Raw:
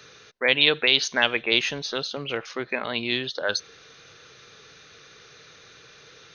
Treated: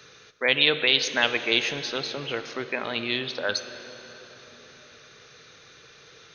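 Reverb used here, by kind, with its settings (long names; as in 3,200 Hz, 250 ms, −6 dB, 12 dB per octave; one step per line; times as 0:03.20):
dense smooth reverb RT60 4.4 s, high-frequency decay 0.7×, DRR 9.5 dB
level −1.5 dB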